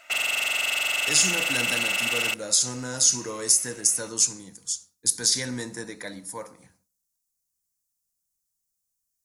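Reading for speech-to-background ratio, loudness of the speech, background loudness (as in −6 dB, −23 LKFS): 0.0 dB, −23.5 LKFS, −23.5 LKFS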